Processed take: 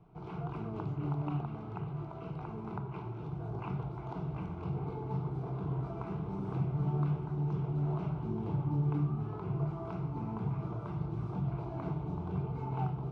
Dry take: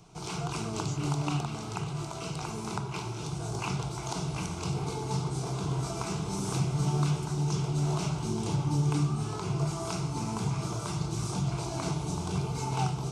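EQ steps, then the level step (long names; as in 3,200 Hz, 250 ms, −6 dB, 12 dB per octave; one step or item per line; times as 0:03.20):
high-frequency loss of the air 350 metres
parametric band 5,300 Hz −14 dB 2.3 octaves
−3.5 dB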